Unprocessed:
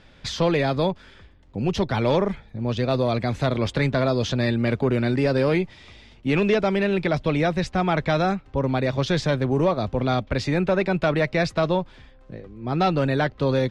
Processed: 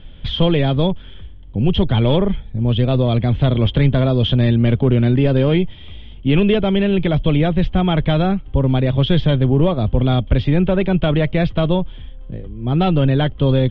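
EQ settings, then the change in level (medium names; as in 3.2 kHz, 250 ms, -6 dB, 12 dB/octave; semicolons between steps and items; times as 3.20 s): resonant low-pass 3.2 kHz, resonance Q 14; tilt EQ -4 dB/octave; -1.5 dB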